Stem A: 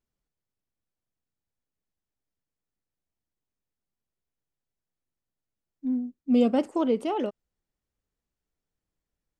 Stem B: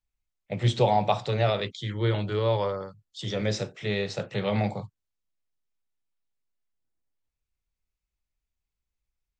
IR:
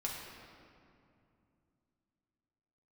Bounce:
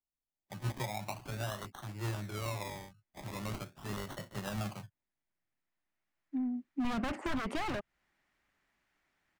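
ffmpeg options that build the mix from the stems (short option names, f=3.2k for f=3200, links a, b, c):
-filter_complex "[0:a]equalizer=f=2k:t=o:w=0.93:g=9,asplit=2[a][b];[b]highpass=f=720:p=1,volume=21dB,asoftclip=type=tanh:threshold=-11dB[c];[a][c]amix=inputs=2:normalize=0,lowpass=f=1.6k:p=1,volume=-6dB,adelay=500,volume=1dB[d];[1:a]highshelf=f=4.5k:g=9.5,dynaudnorm=f=110:g=7:m=9.5dB,acrusher=samples=25:mix=1:aa=0.000001:lfo=1:lforange=15:lforate=0.42,volume=-19.5dB,asplit=2[e][f];[f]apad=whole_len=436383[g];[d][g]sidechaincompress=threshold=-59dB:ratio=3:attack=16:release=1440[h];[h][e]amix=inputs=2:normalize=0,aeval=exprs='0.106*(abs(mod(val(0)/0.106+3,4)-2)-1)':c=same,equalizer=f=470:w=4.8:g=-13,acrossover=split=160[i][j];[j]acompressor=threshold=-34dB:ratio=10[k];[i][k]amix=inputs=2:normalize=0"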